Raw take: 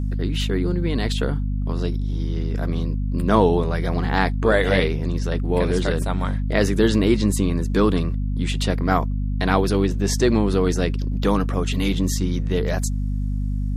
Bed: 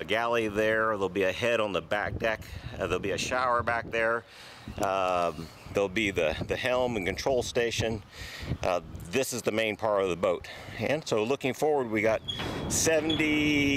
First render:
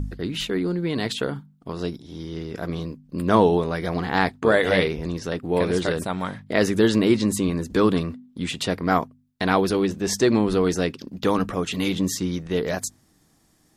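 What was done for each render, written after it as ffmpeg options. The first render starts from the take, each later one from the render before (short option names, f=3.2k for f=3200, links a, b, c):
-af "bandreject=f=50:t=h:w=4,bandreject=f=100:t=h:w=4,bandreject=f=150:t=h:w=4,bandreject=f=200:t=h:w=4,bandreject=f=250:t=h:w=4"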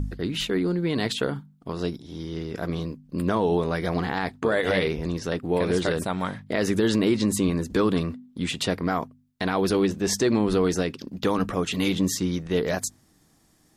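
-af "alimiter=limit=-12dB:level=0:latency=1:release=89"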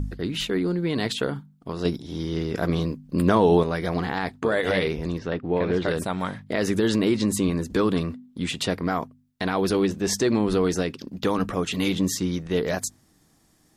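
-filter_complex "[0:a]asplit=3[a][b][c];[a]afade=t=out:st=5.17:d=0.02[d];[b]lowpass=3k,afade=t=in:st=5.17:d=0.02,afade=t=out:st=5.87:d=0.02[e];[c]afade=t=in:st=5.87:d=0.02[f];[d][e][f]amix=inputs=3:normalize=0,asplit=3[g][h][i];[g]atrim=end=1.852[j];[h]atrim=start=1.848:end=3.632,asetpts=PTS-STARTPTS,volume=5dB[k];[i]atrim=start=3.628[l];[j][k]acrossfade=d=0.004:c1=hsin:c2=hsin[m];[m][l]acrossfade=d=0.004:c1=hsin:c2=hsin"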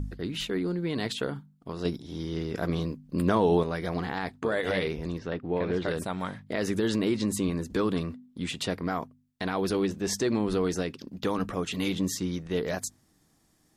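-af "volume=-5dB"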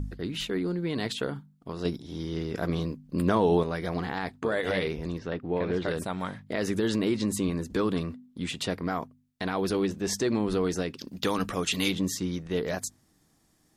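-filter_complex "[0:a]asplit=3[a][b][c];[a]afade=t=out:st=10.96:d=0.02[d];[b]highshelf=f=2k:g=9.5,afade=t=in:st=10.96:d=0.02,afade=t=out:st=11.9:d=0.02[e];[c]afade=t=in:st=11.9:d=0.02[f];[d][e][f]amix=inputs=3:normalize=0"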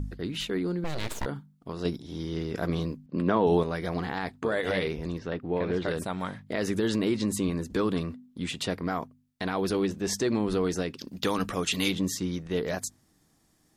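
-filter_complex "[0:a]asettb=1/sr,asplit=3[a][b][c];[a]atrim=end=0.844[d];[b]atrim=start=0.84:end=1.26,asetpts=PTS-STARTPTS,afade=t=in:d=0.004:c=qsin,afade=t=out:st=0.416:d=0.004:c=qsin,aeval=exprs='abs(val(0))':c=same[e];[c]atrim=start=1.256[f];[d][e]acrossfade=d=0.004:c1=hsin:c2=qsin[g];[g][f]acrossfade=d=0.004:c1=qsin:c2=hsin,asettb=1/sr,asplit=3[h][i][j];[h]atrim=end=3.064[k];[i]atrim=start=3.06:end=3.47,asetpts=PTS-STARTPTS,afade=t=in:d=0.004:c=qsin,afade=t=out:st=0.406:d=0.004:c=qsin,highpass=140,lowpass=3.2k[l];[j]atrim=start=3.466[m];[k][l]acrossfade=d=0.004:c1=hsin:c2=qsin[n];[n][m]acrossfade=d=0.004:c1=qsin:c2=hsin"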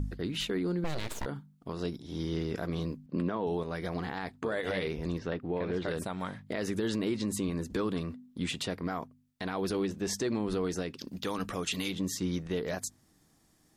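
-af "alimiter=limit=-22dB:level=0:latency=1:release=324"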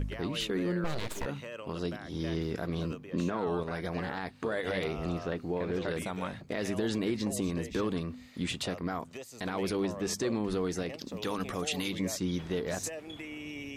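-filter_complex "[1:a]volume=-16.5dB[a];[0:a][a]amix=inputs=2:normalize=0"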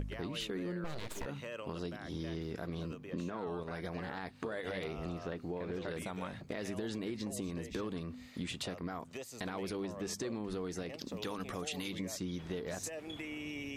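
-af "acompressor=threshold=-38dB:ratio=3"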